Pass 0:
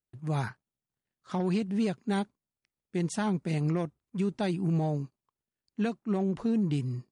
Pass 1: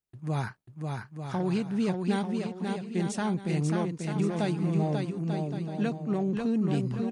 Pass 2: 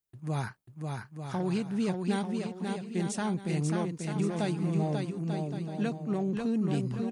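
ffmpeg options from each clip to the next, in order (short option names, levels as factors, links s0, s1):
-af "aecho=1:1:540|891|1119|1267|1364:0.631|0.398|0.251|0.158|0.1"
-af "highshelf=f=8600:g=8,volume=0.794"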